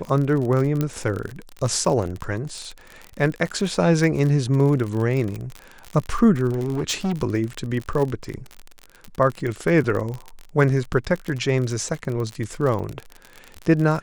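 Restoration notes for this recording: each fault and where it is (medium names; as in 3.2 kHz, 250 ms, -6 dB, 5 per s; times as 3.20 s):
crackle 43 per s -26 dBFS
0.81 s: pop -10 dBFS
6.50–7.13 s: clipped -19.5 dBFS
9.40 s: dropout 3.3 ms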